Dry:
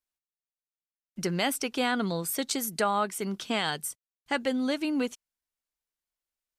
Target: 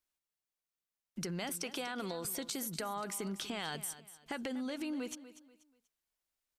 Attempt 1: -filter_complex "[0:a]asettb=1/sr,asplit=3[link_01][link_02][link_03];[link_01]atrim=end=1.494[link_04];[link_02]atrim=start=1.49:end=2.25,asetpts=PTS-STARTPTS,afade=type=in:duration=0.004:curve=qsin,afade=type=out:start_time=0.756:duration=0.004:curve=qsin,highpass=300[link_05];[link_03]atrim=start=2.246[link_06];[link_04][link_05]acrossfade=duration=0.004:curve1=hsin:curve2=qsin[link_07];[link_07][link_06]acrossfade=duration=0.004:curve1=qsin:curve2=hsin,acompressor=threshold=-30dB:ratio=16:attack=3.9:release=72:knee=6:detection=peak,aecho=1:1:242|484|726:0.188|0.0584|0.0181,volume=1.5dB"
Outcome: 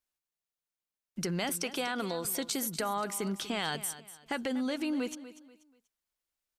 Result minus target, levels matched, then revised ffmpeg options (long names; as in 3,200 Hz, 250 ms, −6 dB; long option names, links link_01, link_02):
downward compressor: peak gain reduction −6.5 dB
-filter_complex "[0:a]asettb=1/sr,asplit=3[link_01][link_02][link_03];[link_01]atrim=end=1.494[link_04];[link_02]atrim=start=1.49:end=2.25,asetpts=PTS-STARTPTS,afade=type=in:duration=0.004:curve=qsin,afade=type=out:start_time=0.756:duration=0.004:curve=qsin,highpass=300[link_05];[link_03]atrim=start=2.246[link_06];[link_04][link_05]acrossfade=duration=0.004:curve1=hsin:curve2=qsin[link_07];[link_07][link_06]acrossfade=duration=0.004:curve1=qsin:curve2=hsin,acompressor=threshold=-37dB:ratio=16:attack=3.9:release=72:knee=6:detection=peak,aecho=1:1:242|484|726:0.188|0.0584|0.0181,volume=1.5dB"